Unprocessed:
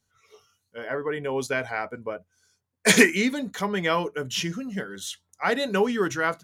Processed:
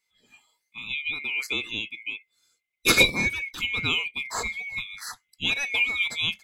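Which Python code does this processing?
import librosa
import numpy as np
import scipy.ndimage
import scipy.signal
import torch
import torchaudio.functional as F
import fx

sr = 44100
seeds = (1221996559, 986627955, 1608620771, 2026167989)

y = fx.band_swap(x, sr, width_hz=2000)
y = fx.low_shelf(y, sr, hz=190.0, db=6.5, at=(3.26, 5.44))
y = F.gain(torch.from_numpy(y), -2.0).numpy()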